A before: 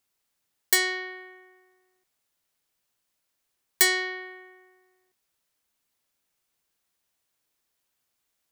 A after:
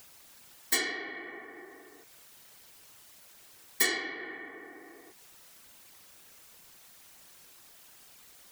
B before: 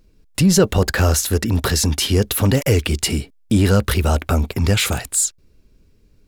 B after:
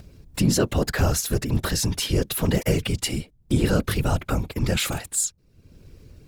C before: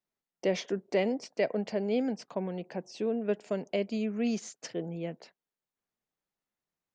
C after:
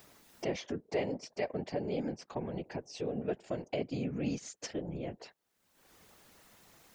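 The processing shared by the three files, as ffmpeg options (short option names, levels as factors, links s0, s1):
-af "acompressor=mode=upward:threshold=0.0501:ratio=2.5,afftfilt=real='hypot(re,im)*cos(2*PI*random(0))':imag='hypot(re,im)*sin(2*PI*random(1))':win_size=512:overlap=0.75"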